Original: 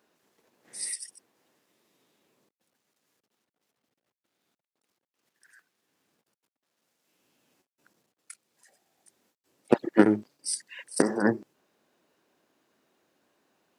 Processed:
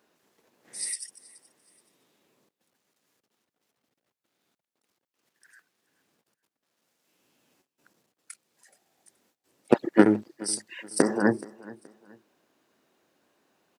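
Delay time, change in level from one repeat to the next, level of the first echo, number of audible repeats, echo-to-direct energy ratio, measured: 425 ms, -10.0 dB, -21.0 dB, 2, -20.5 dB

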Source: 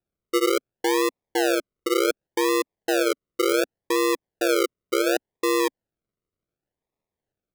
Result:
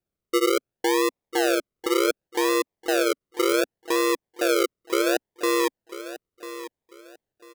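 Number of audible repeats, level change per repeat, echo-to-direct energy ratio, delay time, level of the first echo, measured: 2, -11.5 dB, -13.5 dB, 995 ms, -14.0 dB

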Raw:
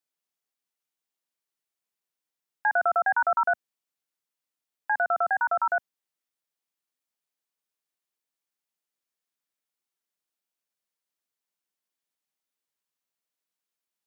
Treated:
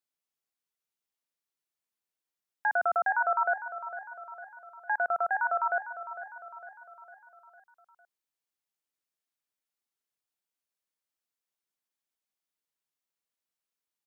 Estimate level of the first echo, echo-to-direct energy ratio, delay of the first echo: -12.5 dB, -11.0 dB, 454 ms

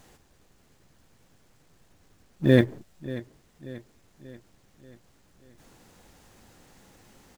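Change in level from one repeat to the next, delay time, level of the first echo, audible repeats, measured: -6.0 dB, 586 ms, -16.5 dB, 4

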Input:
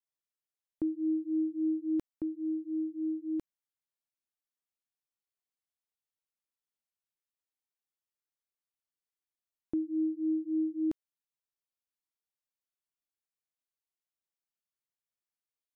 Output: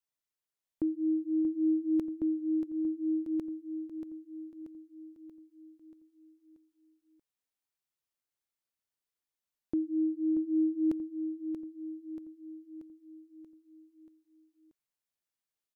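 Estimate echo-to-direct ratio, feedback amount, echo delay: -7.0 dB, 54%, 633 ms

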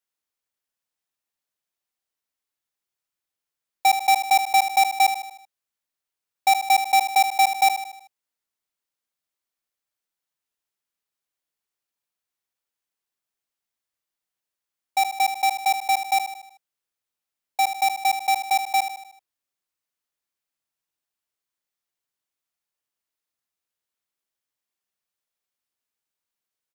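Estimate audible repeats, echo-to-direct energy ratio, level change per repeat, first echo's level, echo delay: 5, -8.5 dB, -6.0 dB, -9.5 dB, 77 ms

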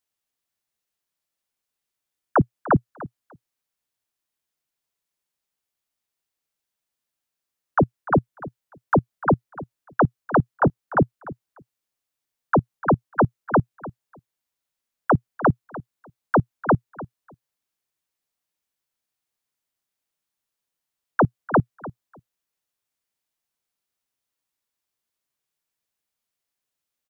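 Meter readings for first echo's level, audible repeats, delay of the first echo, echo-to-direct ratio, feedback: -17.0 dB, 2, 297 ms, -17.0 dB, 16%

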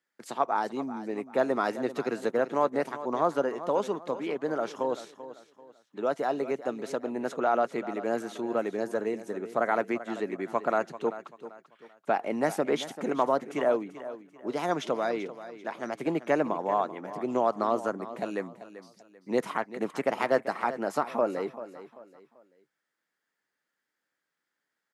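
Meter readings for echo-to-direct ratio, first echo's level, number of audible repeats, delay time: -13.5 dB, -14.0 dB, 3, 389 ms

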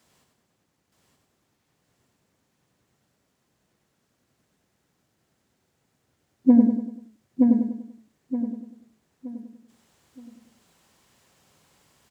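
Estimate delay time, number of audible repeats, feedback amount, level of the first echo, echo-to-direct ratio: 97 ms, 18, no regular repeats, -5.5 dB, 0.5 dB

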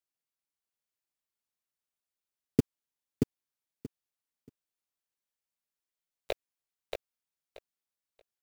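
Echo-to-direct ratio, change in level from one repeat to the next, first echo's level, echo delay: -4.0 dB, -14.5 dB, -4.0 dB, 630 ms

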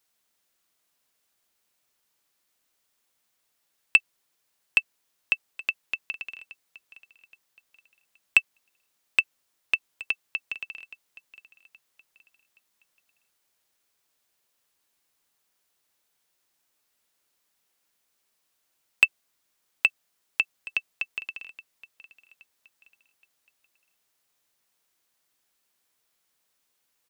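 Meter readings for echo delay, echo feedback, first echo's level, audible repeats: 822 ms, 35%, -19.0 dB, 2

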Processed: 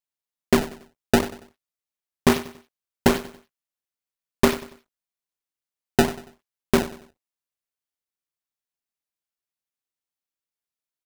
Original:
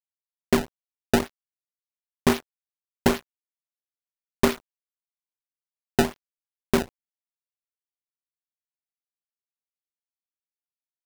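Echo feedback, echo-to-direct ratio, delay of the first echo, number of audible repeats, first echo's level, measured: 35%, -14.5 dB, 94 ms, 3, -15.0 dB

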